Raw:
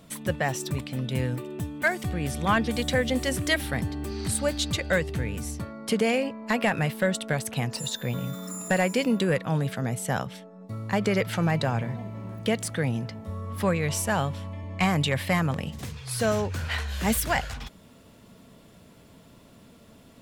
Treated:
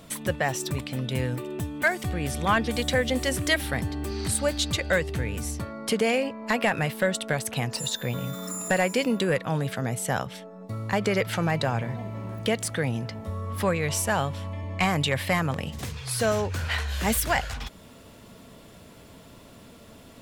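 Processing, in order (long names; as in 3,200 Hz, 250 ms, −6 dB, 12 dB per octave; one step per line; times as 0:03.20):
parametric band 180 Hz −4 dB 1.3 octaves
in parallel at −1 dB: downward compressor, threshold −38 dBFS, peak gain reduction 17.5 dB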